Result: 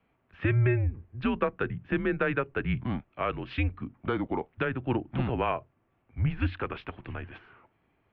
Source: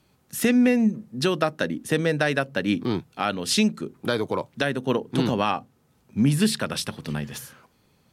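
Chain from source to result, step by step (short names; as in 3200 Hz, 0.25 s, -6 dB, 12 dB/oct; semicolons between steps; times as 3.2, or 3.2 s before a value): mistuned SSB -130 Hz 220–2800 Hz; gain -4 dB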